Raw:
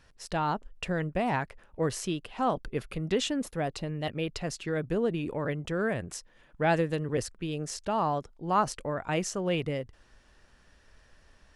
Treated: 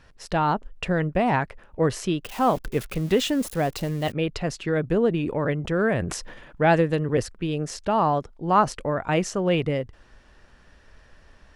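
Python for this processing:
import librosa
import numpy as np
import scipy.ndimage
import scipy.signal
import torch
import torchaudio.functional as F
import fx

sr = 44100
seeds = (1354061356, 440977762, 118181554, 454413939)

y = fx.crossing_spikes(x, sr, level_db=-32.5, at=(2.24, 4.12))
y = fx.high_shelf(y, sr, hz=4800.0, db=-8.5)
y = fx.sustainer(y, sr, db_per_s=45.0, at=(5.61, 6.61))
y = F.gain(torch.from_numpy(y), 7.0).numpy()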